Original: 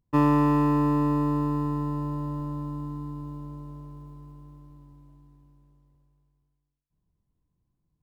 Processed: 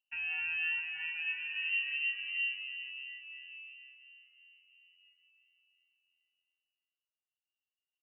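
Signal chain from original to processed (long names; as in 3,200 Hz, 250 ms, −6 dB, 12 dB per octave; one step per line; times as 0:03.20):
source passing by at 0:01.70, 41 m/s, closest 29 metres
high-pass filter 57 Hz
low-shelf EQ 230 Hz +6 dB
downward compressor 4 to 1, threshold −27 dBFS, peak gain reduction 5 dB
double-tracking delay 42 ms −6.5 dB
on a send at −3 dB: convolution reverb RT60 0.95 s, pre-delay 171 ms
on the sum: voice inversion scrambler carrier 2,900 Hz
barber-pole flanger 3.6 ms −2.9 Hz
level −6.5 dB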